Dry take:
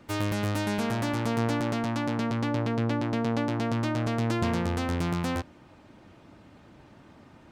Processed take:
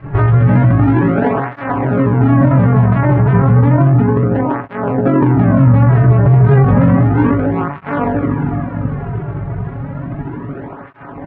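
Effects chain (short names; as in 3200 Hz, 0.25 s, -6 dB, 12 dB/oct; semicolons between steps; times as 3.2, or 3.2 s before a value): on a send: feedback echo 85 ms, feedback 33%, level -14 dB; on the sum: grains, grains 20/s, spray 11 ms, pitch spread up and down by 3 st; spring tank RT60 2.5 s, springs 33/47 ms, chirp 60 ms, DRR 12.5 dB; in parallel at 0 dB: compressor, threshold -37 dBFS, peak gain reduction 12.5 dB; on the sum: low shelf 67 Hz +9.5 dB; de-hum 80.54 Hz, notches 39; granular stretch 1.5×, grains 43 ms; crackle 230/s -44 dBFS; LPF 1800 Hz 24 dB/oct; low shelf 170 Hz +9 dB; maximiser +23 dB; tape flanging out of phase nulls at 0.32 Hz, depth 4.2 ms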